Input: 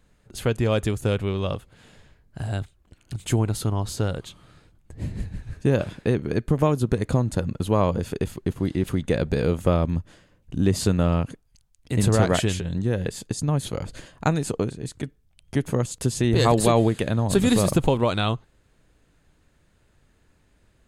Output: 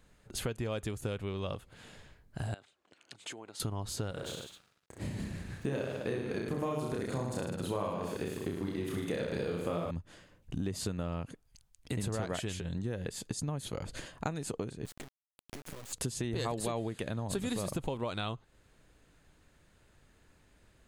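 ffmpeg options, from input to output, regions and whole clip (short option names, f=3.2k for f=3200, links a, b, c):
-filter_complex "[0:a]asettb=1/sr,asplit=3[a][b][c];[a]atrim=end=2.544[d];[b]atrim=start=2.54:end=3.6,asetpts=PTS-STARTPTS,afade=t=in:d=0.004:c=qsin,afade=t=out:st=1.056:d=0.004:c=qsin,acompressor=threshold=-38dB:ratio=3:attack=3.2:release=140:knee=1:detection=peak,highpass=390,lowpass=6.4k[e];[c]atrim=start=3.596[f];[d][e]acrossfade=d=0.004:c1=hsin:c2=qsin[g];[g][f]acrossfade=d=0.004:c1=qsin:c2=hsin,asettb=1/sr,asplit=3[h][i][j];[h]atrim=end=4.114[k];[i]atrim=start=4.11:end=9.91,asetpts=PTS-STARTPTS,afade=t=in:d=0.004:c=qsin,afade=t=out:st=5.796:d=0.004:c=qsin,highpass=f=180:p=1,aeval=exprs='sgn(val(0))*max(abs(val(0))-0.00251,0)':c=same,aecho=1:1:30|64.5|104.2|149.8|202.3|262.6:0.794|0.631|0.501|0.398|0.316|0.251,atrim=end_sample=255780[l];[j]atrim=start=9.906[m];[k][l]acrossfade=d=0.004:c1=hsin:c2=qsin[n];[n][m]acrossfade=d=0.004:c1=qsin:c2=hsin,asettb=1/sr,asplit=3[o][p][q];[o]atrim=end=14.854[r];[p]atrim=start=14.85:end=15.93,asetpts=PTS-STARTPTS,afade=t=in:d=0.004:c=qsin,afade=t=out:st=1.076:d=0.004:c=qsin,acompressor=threshold=-35dB:ratio=8:attack=3.2:release=140:knee=1:detection=peak,acrusher=bits=5:dc=4:mix=0:aa=0.000001[s];[q]atrim=start=15.926[t];[r][s]acrossfade=d=0.004:c1=hsin:c2=qsin[u];[u][t]acrossfade=d=0.004:c1=qsin:c2=hsin,lowshelf=f=350:g=-3.5,acompressor=threshold=-34dB:ratio=4"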